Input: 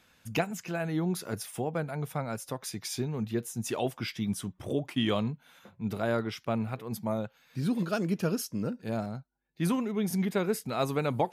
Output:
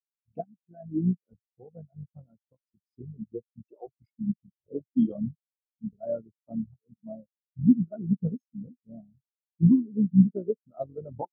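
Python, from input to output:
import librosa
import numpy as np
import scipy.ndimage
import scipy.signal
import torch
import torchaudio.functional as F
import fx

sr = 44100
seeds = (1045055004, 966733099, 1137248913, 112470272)

y = fx.cycle_switch(x, sr, every=3, mode='muted')
y = fx.spectral_expand(y, sr, expansion=4.0)
y = y * librosa.db_to_amplitude(7.5)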